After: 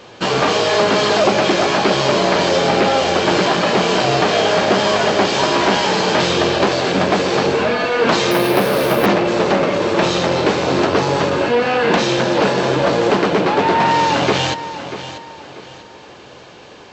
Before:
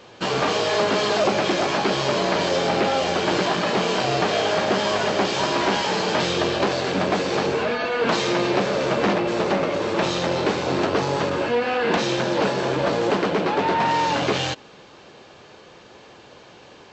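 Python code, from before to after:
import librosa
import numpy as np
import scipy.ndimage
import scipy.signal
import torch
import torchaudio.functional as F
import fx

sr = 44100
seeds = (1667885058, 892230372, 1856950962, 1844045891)

y = fx.echo_feedback(x, sr, ms=639, feedback_pct=33, wet_db=-12.5)
y = fx.resample_bad(y, sr, factor=3, down='filtered', up='hold', at=(8.31, 9.06))
y = y * 10.0 ** (6.0 / 20.0)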